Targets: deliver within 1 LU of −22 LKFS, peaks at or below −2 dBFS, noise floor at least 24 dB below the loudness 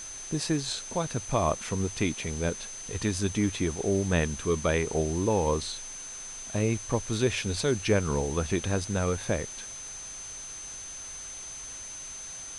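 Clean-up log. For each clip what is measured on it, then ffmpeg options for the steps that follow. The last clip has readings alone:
interfering tone 6,200 Hz; level of the tone −39 dBFS; background noise floor −41 dBFS; target noise floor −54 dBFS; integrated loudness −30.0 LKFS; sample peak −10.5 dBFS; target loudness −22.0 LKFS
→ -af "bandreject=frequency=6200:width=30"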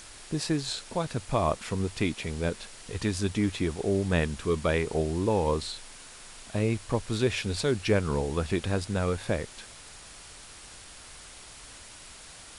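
interfering tone none found; background noise floor −48 dBFS; target noise floor −54 dBFS
→ -af "afftdn=noise_reduction=6:noise_floor=-48"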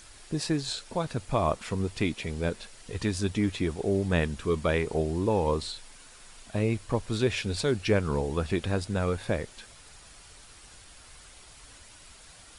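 background noise floor −52 dBFS; target noise floor −54 dBFS
→ -af "afftdn=noise_reduction=6:noise_floor=-52"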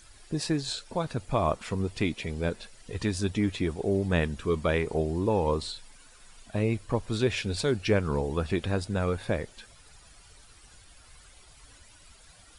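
background noise floor −55 dBFS; integrated loudness −29.5 LKFS; sample peak −11.0 dBFS; target loudness −22.0 LKFS
→ -af "volume=7.5dB"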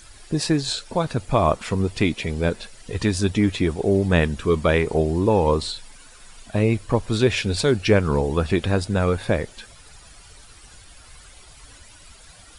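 integrated loudness −22.0 LKFS; sample peak −3.5 dBFS; background noise floor −47 dBFS

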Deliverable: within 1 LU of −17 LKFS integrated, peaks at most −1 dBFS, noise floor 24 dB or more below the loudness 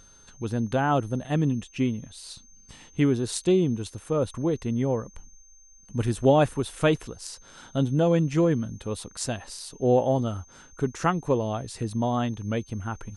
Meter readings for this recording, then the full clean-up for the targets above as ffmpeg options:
interfering tone 6,300 Hz; level of the tone −53 dBFS; integrated loudness −26.0 LKFS; sample peak −8.5 dBFS; target loudness −17.0 LKFS
→ -af "bandreject=frequency=6300:width=30"
-af "volume=9dB,alimiter=limit=-1dB:level=0:latency=1"

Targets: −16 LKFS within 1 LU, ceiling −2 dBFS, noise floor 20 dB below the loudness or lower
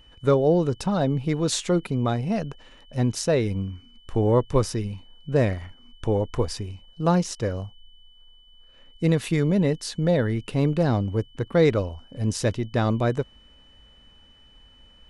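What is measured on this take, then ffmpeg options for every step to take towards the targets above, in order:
interfering tone 3,000 Hz; level of the tone −54 dBFS; integrated loudness −24.5 LKFS; sample peak −8.5 dBFS; target loudness −16.0 LKFS
→ -af "bandreject=frequency=3000:width=30"
-af "volume=8.5dB,alimiter=limit=-2dB:level=0:latency=1"

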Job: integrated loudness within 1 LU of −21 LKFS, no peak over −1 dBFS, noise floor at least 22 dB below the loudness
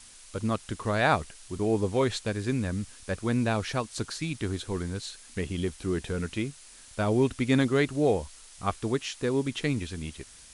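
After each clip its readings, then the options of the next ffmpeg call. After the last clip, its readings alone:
background noise floor −51 dBFS; target noise floor −52 dBFS; integrated loudness −29.5 LKFS; sample peak −10.5 dBFS; target loudness −21.0 LKFS
→ -af "afftdn=noise_reduction=6:noise_floor=-51"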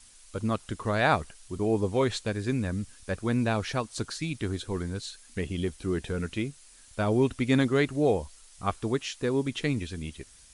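background noise floor −54 dBFS; integrated loudness −29.5 LKFS; sample peak −10.5 dBFS; target loudness −21.0 LKFS
→ -af "volume=8.5dB"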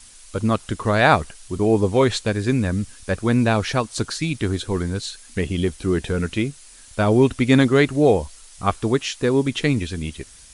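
integrated loudness −21.0 LKFS; sample peak −2.0 dBFS; background noise floor −46 dBFS

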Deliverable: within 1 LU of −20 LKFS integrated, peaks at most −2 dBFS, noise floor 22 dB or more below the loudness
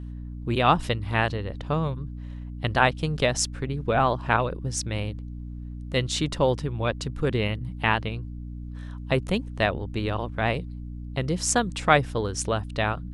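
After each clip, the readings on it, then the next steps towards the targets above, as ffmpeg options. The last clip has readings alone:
mains hum 60 Hz; hum harmonics up to 300 Hz; level of the hum −33 dBFS; integrated loudness −26.0 LKFS; sample peak −3.5 dBFS; target loudness −20.0 LKFS
→ -af "bandreject=frequency=60:width_type=h:width=4,bandreject=frequency=120:width_type=h:width=4,bandreject=frequency=180:width_type=h:width=4,bandreject=frequency=240:width_type=h:width=4,bandreject=frequency=300:width_type=h:width=4"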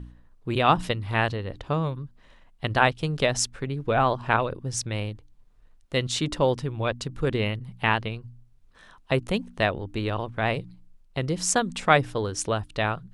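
mains hum none found; integrated loudness −26.0 LKFS; sample peak −3.5 dBFS; target loudness −20.0 LKFS
→ -af "volume=6dB,alimiter=limit=-2dB:level=0:latency=1"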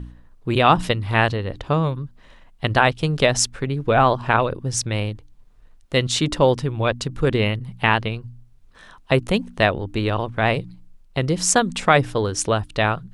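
integrated loudness −20.5 LKFS; sample peak −2.0 dBFS; background noise floor −50 dBFS

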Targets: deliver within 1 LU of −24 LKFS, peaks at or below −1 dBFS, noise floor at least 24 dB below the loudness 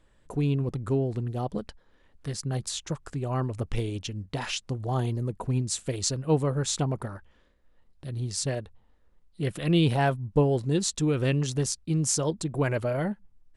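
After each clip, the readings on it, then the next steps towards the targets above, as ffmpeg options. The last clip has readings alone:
integrated loudness −28.5 LKFS; sample peak −8.0 dBFS; target loudness −24.0 LKFS
→ -af "volume=4.5dB"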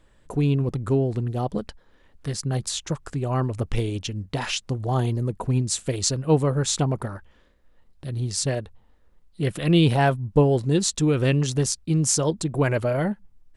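integrated loudness −24.0 LKFS; sample peak −3.5 dBFS; background noise floor −58 dBFS

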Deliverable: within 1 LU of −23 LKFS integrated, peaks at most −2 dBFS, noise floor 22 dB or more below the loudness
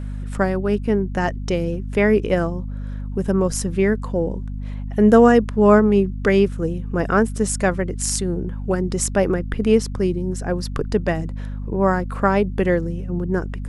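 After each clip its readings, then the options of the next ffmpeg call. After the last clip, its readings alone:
mains hum 50 Hz; hum harmonics up to 250 Hz; level of the hum −26 dBFS; integrated loudness −20.0 LKFS; sample peak −1.0 dBFS; target loudness −23.0 LKFS
→ -af "bandreject=frequency=50:width_type=h:width=4,bandreject=frequency=100:width_type=h:width=4,bandreject=frequency=150:width_type=h:width=4,bandreject=frequency=200:width_type=h:width=4,bandreject=frequency=250:width_type=h:width=4"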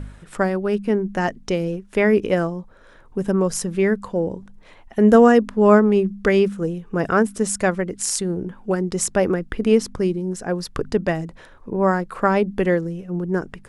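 mains hum none found; integrated loudness −20.5 LKFS; sample peak −2.0 dBFS; target loudness −23.0 LKFS
→ -af "volume=-2.5dB"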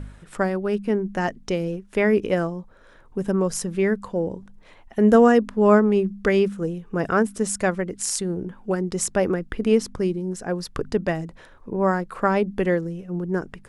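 integrated loudness −23.0 LKFS; sample peak −4.5 dBFS; background noise floor −50 dBFS

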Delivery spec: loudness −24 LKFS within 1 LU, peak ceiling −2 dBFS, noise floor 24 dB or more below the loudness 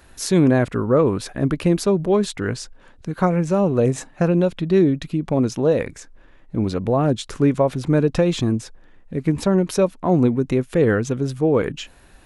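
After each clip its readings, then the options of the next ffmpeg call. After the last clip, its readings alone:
integrated loudness −20.0 LKFS; sample peak −5.0 dBFS; target loudness −24.0 LKFS
→ -af "volume=-4dB"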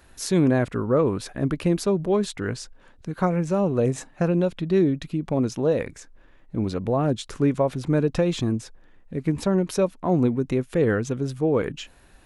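integrated loudness −24.0 LKFS; sample peak −9.0 dBFS; background noise floor −53 dBFS

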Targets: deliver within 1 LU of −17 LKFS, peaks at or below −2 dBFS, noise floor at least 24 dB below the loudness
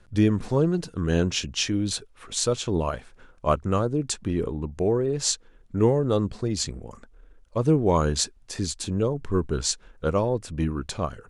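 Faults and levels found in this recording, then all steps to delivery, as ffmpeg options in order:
integrated loudness −25.5 LKFS; sample peak −7.0 dBFS; target loudness −17.0 LKFS
→ -af "volume=8.5dB,alimiter=limit=-2dB:level=0:latency=1"

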